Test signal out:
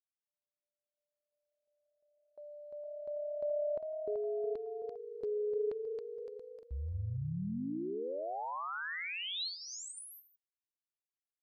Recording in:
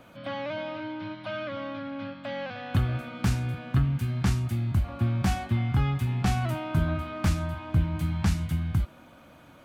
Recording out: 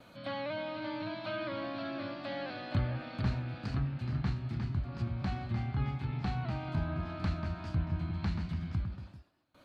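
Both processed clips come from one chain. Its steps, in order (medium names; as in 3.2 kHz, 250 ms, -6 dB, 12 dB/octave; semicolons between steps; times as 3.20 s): gain riding within 4 dB 2 s; gate with hold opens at -42 dBFS; peaking EQ 4.2 kHz +13.5 dB 0.21 oct; ever faster or slower copies 594 ms, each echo +1 st, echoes 3, each echo -6 dB; low-pass that closes with the level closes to 2.7 kHz, closed at -23 dBFS; trim -8 dB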